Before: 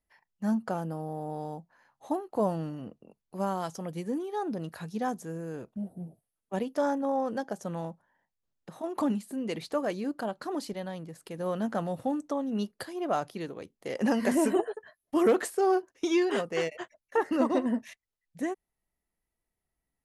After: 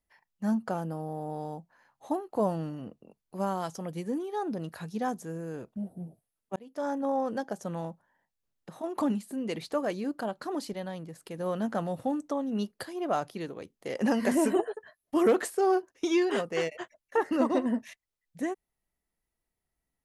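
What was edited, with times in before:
6.56–7.05 s: fade in

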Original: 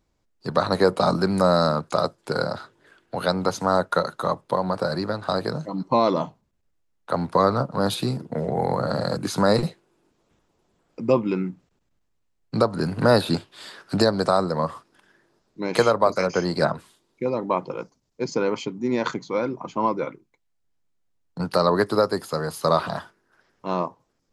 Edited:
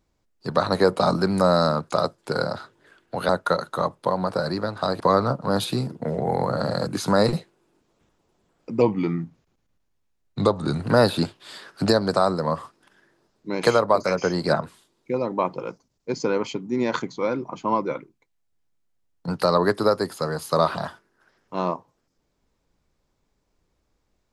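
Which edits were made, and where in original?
3.29–3.75 s: delete
5.46–7.30 s: delete
11.11–12.95 s: speed 91%

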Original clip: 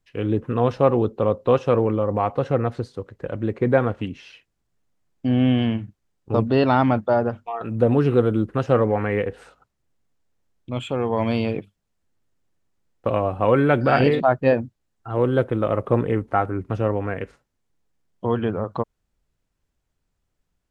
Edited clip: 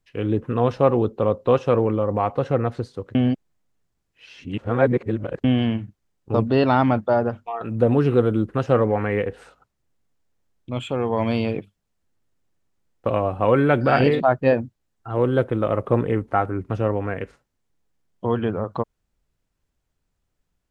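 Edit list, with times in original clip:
3.15–5.44 s: reverse

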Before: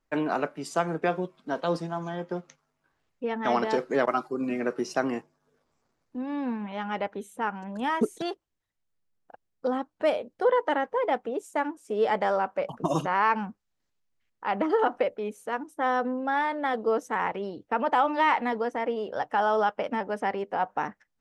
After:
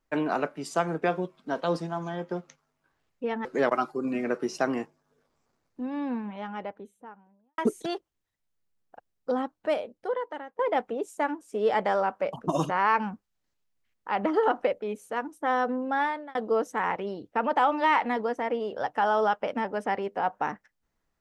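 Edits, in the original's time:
3.45–3.81 s: delete
6.18–7.94 s: studio fade out
9.75–10.95 s: fade out, to -21 dB
16.39–16.71 s: fade out

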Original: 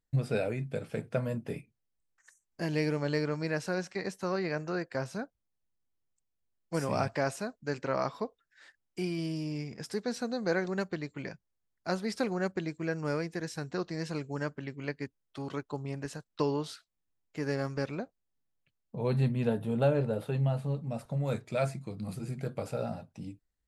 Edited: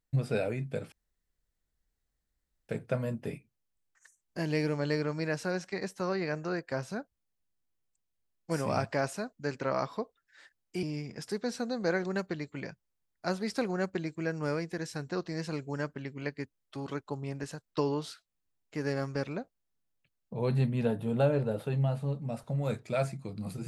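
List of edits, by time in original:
0.92 s: insert room tone 1.77 s
9.06–9.45 s: delete

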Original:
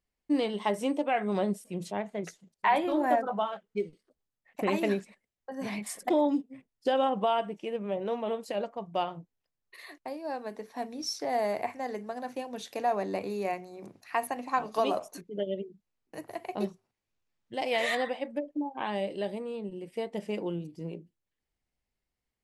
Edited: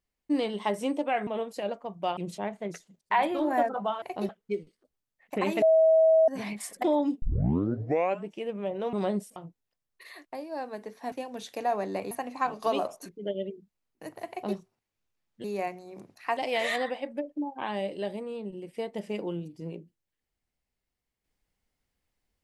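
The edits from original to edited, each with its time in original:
1.27–1.70 s: swap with 8.19–9.09 s
4.88–5.54 s: bleep 643 Hz -16.5 dBFS
6.48 s: tape start 1.06 s
10.85–12.31 s: delete
13.30–14.23 s: move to 17.56 s
16.41–16.68 s: copy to 3.55 s

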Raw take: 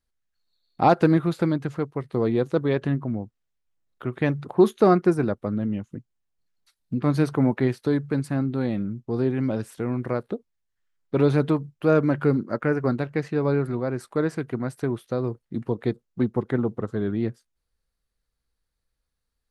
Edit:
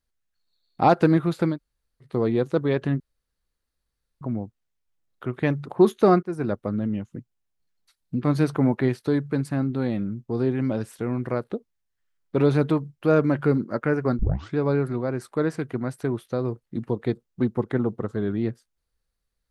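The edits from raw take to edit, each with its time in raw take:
1.54–2.05 s: room tone, crossfade 0.10 s
3.00 s: insert room tone 1.21 s
5.02–5.32 s: fade in, from -23 dB
12.98 s: tape start 0.38 s

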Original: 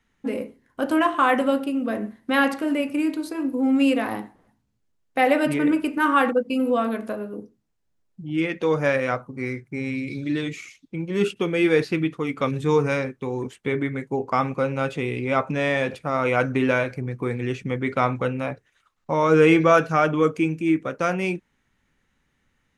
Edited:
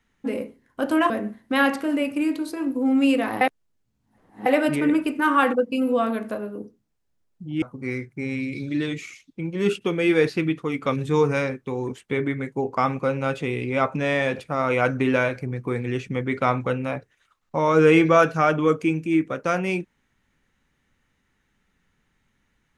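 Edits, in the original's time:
1.10–1.88 s: delete
4.19–5.24 s: reverse
8.40–9.17 s: delete

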